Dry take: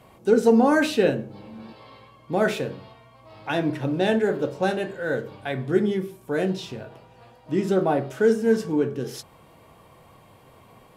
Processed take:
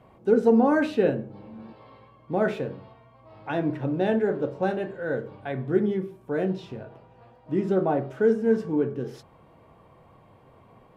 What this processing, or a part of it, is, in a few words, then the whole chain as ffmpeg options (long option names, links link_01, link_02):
through cloth: -af "highshelf=frequency=3300:gain=-18,volume=-1.5dB"